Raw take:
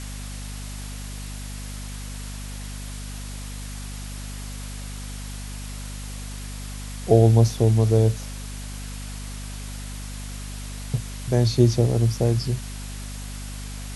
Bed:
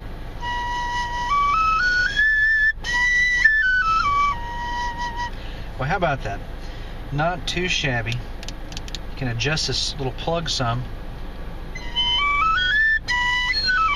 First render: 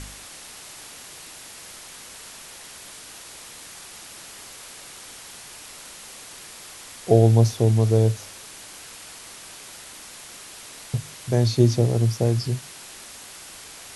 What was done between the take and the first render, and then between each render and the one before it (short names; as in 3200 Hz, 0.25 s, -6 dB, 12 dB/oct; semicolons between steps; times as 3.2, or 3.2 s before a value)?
de-hum 50 Hz, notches 5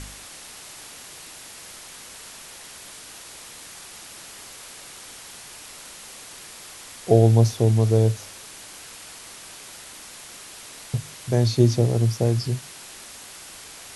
nothing audible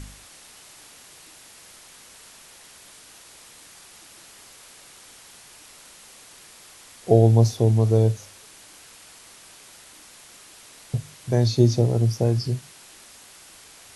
noise print and reduce 6 dB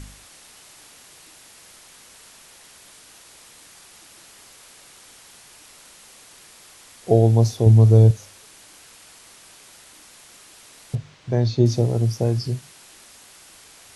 7.66–8.11 bell 74 Hz +8.5 dB 2.9 oct; 10.95–11.66 air absorption 130 m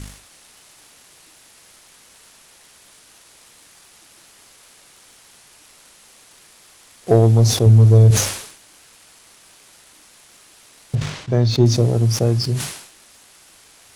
sample leveller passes 1; sustainer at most 82 dB/s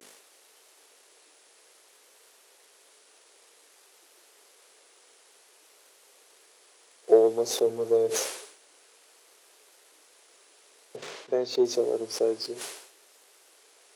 vibrato 0.55 Hz 63 cents; ladder high-pass 370 Hz, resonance 55%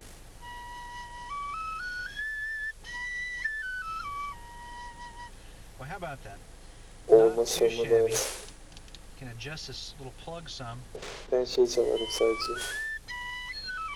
add bed -17 dB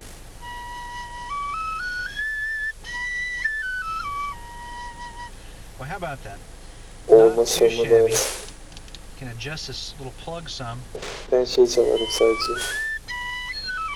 gain +7.5 dB; limiter -2 dBFS, peak gain reduction 2 dB